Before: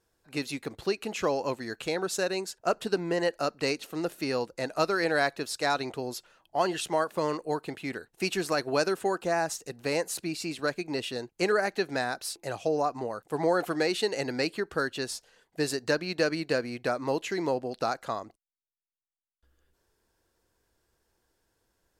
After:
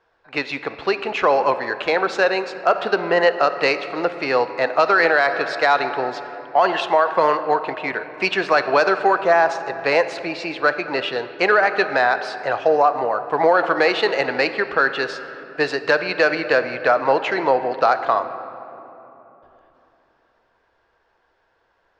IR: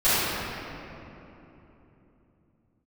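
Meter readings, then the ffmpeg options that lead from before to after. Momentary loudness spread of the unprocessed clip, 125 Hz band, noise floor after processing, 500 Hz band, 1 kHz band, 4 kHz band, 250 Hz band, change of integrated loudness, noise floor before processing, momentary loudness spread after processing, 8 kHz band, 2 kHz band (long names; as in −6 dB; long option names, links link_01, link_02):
8 LU, 0.0 dB, −65 dBFS, +10.0 dB, +14.0 dB, +6.5 dB, +4.0 dB, +11.0 dB, −80 dBFS, 9 LU, can't be measured, +13.5 dB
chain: -filter_complex "[0:a]adynamicsmooth=sensitivity=0.5:basefreq=2400,acrossover=split=560 6000:gain=0.126 1 0.141[link_01][link_02][link_03];[link_01][link_02][link_03]amix=inputs=3:normalize=0,asplit=2[link_04][link_05];[1:a]atrim=start_sample=2205[link_06];[link_05][link_06]afir=irnorm=-1:irlink=0,volume=-30.5dB[link_07];[link_04][link_07]amix=inputs=2:normalize=0,alimiter=level_in=22dB:limit=-1dB:release=50:level=0:latency=1,volume=-4.5dB"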